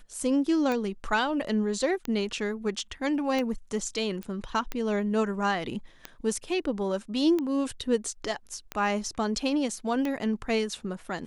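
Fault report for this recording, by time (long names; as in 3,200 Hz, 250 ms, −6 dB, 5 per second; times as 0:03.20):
scratch tick 45 rpm −17 dBFS
0:04.23: click −24 dBFS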